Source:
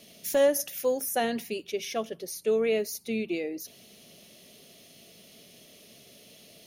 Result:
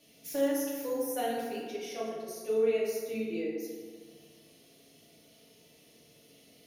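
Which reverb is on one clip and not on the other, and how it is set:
feedback delay network reverb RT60 1.8 s, low-frequency decay 0.95×, high-frequency decay 0.45×, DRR −7.5 dB
level −13.5 dB

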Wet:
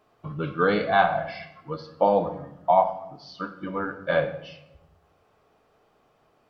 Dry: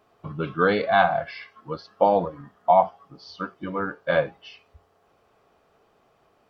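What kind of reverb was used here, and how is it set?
rectangular room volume 240 cubic metres, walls mixed, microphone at 0.47 metres
level −2 dB

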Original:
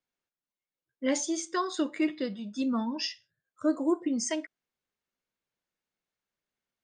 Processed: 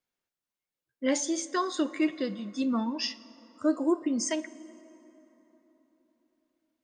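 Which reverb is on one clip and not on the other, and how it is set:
dense smooth reverb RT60 4 s, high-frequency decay 0.5×, DRR 17 dB
level +1 dB

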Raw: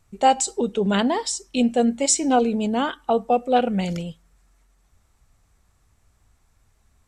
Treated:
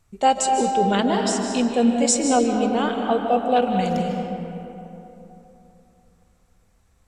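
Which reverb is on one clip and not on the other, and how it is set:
comb and all-pass reverb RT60 3.2 s, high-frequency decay 0.5×, pre-delay 110 ms, DRR 2.5 dB
level −1 dB

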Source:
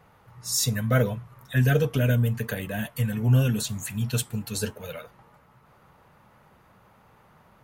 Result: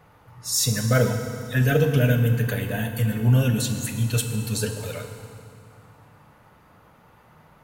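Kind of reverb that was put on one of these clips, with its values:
feedback delay network reverb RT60 2.4 s, low-frequency decay 1.35×, high-frequency decay 0.95×, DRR 5.5 dB
level +2 dB

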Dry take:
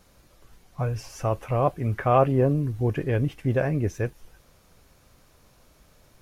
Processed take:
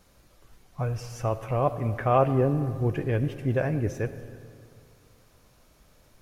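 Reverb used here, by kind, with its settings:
comb and all-pass reverb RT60 2.4 s, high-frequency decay 0.55×, pre-delay 30 ms, DRR 12 dB
level −2 dB

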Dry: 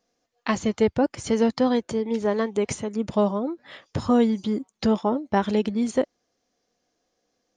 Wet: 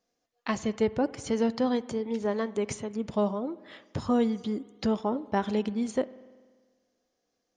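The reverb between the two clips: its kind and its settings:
spring reverb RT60 1.5 s, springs 48 ms, chirp 70 ms, DRR 17.5 dB
level −5.5 dB

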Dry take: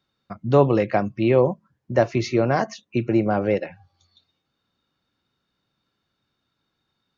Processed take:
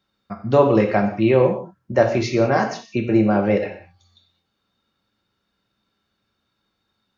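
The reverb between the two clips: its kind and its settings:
reverb whose tail is shaped and stops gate 220 ms falling, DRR 2.5 dB
level +1 dB

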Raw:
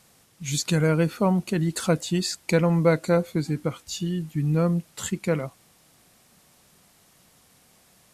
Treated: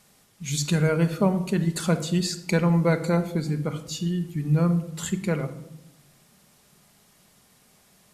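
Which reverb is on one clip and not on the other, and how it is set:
rectangular room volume 2,400 cubic metres, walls furnished, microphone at 1.3 metres
level −1.5 dB

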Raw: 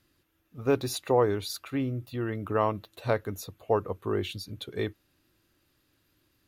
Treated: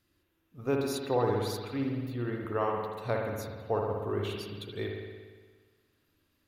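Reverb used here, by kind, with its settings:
spring reverb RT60 1.5 s, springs 58 ms, chirp 25 ms, DRR 0 dB
level −5.5 dB

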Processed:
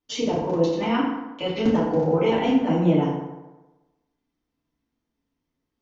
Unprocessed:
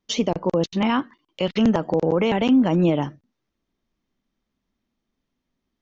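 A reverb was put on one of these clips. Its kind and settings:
feedback delay network reverb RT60 1.1 s, low-frequency decay 0.9×, high-frequency decay 0.55×, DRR −8.5 dB
level −10.5 dB

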